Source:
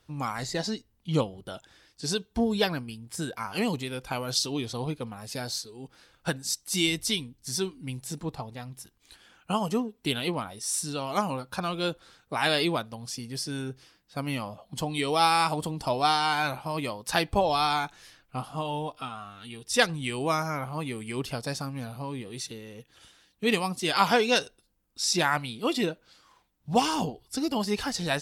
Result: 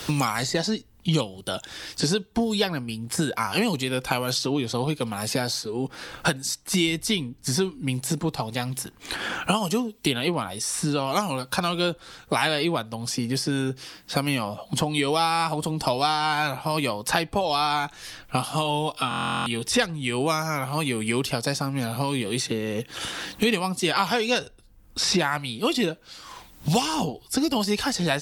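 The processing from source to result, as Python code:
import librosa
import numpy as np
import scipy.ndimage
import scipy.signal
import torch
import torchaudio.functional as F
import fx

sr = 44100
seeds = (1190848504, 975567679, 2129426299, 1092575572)

y = fx.buffer_glitch(x, sr, at_s=(19.09,), block=1024, repeats=15)
y = fx.band_squash(y, sr, depth_pct=100)
y = y * librosa.db_to_amplitude(3.5)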